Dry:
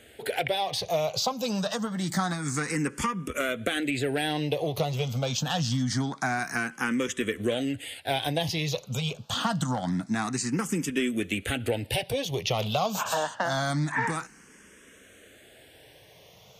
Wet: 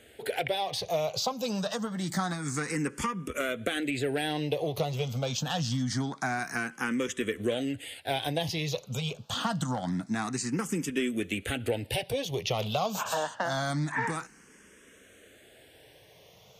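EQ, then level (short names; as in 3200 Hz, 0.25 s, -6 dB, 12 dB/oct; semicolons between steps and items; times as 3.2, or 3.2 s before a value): bell 430 Hz +2 dB; -3.0 dB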